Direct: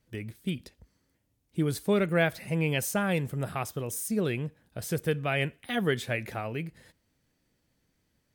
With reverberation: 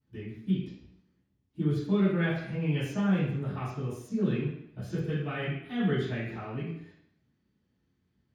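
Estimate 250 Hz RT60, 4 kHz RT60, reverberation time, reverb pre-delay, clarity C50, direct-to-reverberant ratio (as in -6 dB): 0.70 s, 0.70 s, 0.70 s, 3 ms, 1.5 dB, -16.0 dB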